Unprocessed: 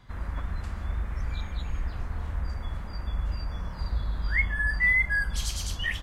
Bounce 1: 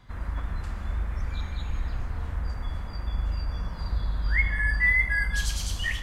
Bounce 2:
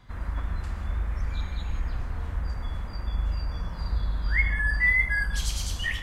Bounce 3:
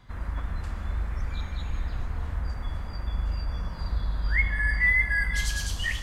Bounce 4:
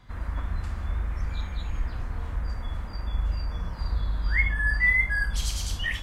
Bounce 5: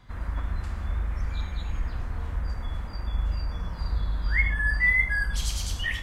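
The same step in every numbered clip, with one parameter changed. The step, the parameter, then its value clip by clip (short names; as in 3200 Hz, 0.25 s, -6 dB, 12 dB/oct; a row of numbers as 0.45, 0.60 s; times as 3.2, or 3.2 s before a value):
non-linear reverb, gate: 320, 200, 470, 90, 130 ms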